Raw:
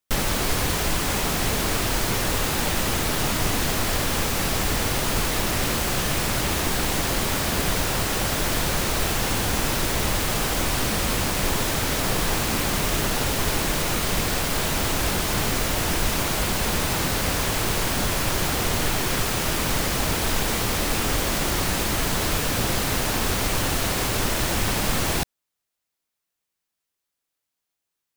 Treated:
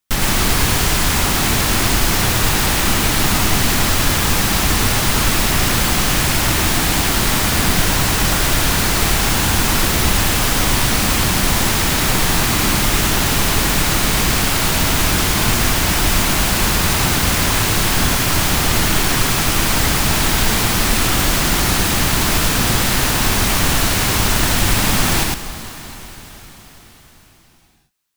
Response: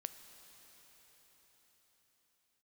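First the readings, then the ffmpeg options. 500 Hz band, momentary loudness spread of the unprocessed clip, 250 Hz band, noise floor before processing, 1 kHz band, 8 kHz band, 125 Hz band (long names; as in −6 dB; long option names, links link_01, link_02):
+3.5 dB, 0 LU, +7.5 dB, −83 dBFS, +7.0 dB, +8.5 dB, +8.0 dB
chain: -filter_complex "[0:a]equalizer=frequency=510:width=1.6:gain=-6.5,asplit=2[link_01][link_02];[1:a]atrim=start_sample=2205,adelay=108[link_03];[link_02][link_03]afir=irnorm=-1:irlink=0,volume=3dB[link_04];[link_01][link_04]amix=inputs=2:normalize=0,volume=5.5dB"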